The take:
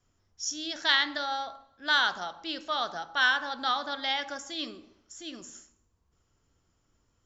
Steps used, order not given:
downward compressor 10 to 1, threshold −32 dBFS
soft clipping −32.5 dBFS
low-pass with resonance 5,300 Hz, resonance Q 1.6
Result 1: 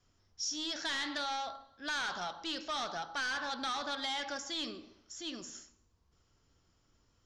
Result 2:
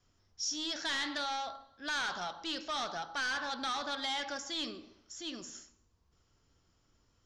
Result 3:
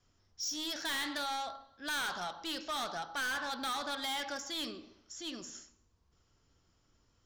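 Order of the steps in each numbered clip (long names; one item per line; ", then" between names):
soft clipping, then low-pass with resonance, then downward compressor
soft clipping, then downward compressor, then low-pass with resonance
low-pass with resonance, then soft clipping, then downward compressor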